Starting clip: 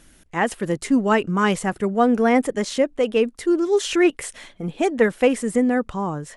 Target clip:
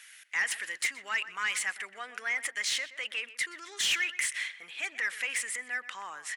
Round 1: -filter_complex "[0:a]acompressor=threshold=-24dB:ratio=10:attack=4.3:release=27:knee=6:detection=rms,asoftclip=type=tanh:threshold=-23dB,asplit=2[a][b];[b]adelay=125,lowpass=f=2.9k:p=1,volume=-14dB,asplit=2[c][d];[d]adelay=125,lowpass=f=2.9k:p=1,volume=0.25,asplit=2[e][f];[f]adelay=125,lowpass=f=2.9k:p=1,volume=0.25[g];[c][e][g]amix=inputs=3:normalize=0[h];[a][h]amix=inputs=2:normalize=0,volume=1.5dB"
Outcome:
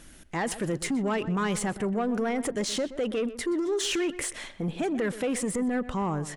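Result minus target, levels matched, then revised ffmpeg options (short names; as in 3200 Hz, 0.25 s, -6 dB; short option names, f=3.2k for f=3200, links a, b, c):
2000 Hz band -9.5 dB
-filter_complex "[0:a]acompressor=threshold=-24dB:ratio=10:attack=4.3:release=27:knee=6:detection=rms,highpass=f=2k:t=q:w=2.8,asoftclip=type=tanh:threshold=-23dB,asplit=2[a][b];[b]adelay=125,lowpass=f=2.9k:p=1,volume=-14dB,asplit=2[c][d];[d]adelay=125,lowpass=f=2.9k:p=1,volume=0.25,asplit=2[e][f];[f]adelay=125,lowpass=f=2.9k:p=1,volume=0.25[g];[c][e][g]amix=inputs=3:normalize=0[h];[a][h]amix=inputs=2:normalize=0,volume=1.5dB"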